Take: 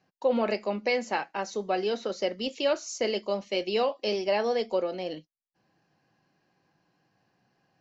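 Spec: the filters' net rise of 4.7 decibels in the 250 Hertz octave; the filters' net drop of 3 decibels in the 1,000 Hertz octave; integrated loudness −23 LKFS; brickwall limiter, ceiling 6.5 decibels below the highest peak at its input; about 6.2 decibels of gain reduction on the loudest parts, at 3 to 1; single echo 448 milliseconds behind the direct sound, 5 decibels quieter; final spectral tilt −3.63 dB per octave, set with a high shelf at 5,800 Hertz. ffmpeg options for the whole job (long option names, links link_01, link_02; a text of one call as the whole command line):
ffmpeg -i in.wav -af "equalizer=frequency=250:width_type=o:gain=6,equalizer=frequency=1000:width_type=o:gain=-5,highshelf=frequency=5800:gain=6,acompressor=threshold=-28dB:ratio=3,alimiter=limit=-24dB:level=0:latency=1,aecho=1:1:448:0.562,volume=10.5dB" out.wav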